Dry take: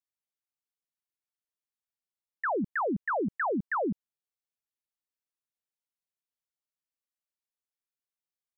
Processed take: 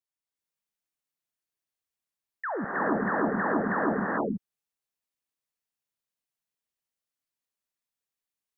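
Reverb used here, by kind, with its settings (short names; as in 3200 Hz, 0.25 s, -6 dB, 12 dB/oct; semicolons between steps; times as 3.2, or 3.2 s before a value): non-linear reverb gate 0.46 s rising, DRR -5 dB; gain -3 dB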